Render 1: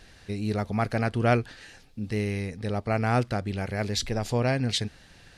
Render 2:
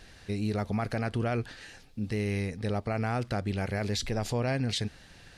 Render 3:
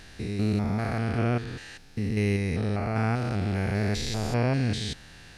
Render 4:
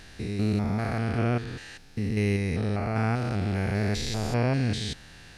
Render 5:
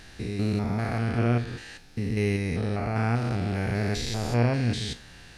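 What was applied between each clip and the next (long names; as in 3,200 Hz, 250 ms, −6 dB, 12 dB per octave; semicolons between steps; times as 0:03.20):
brickwall limiter −21.5 dBFS, peak gain reduction 10.5 dB
spectrum averaged block by block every 200 ms; parametric band 550 Hz −4 dB 0.44 octaves; level +6 dB
no processing that can be heard
tuned comb filter 59 Hz, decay 0.3 s, harmonics all, mix 60%; level +4.5 dB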